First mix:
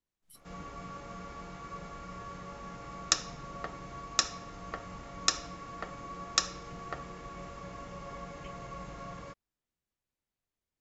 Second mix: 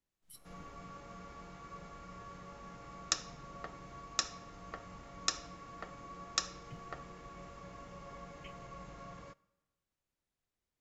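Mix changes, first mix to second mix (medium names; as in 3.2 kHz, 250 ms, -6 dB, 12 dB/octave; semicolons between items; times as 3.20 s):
speech: send on; background -6.0 dB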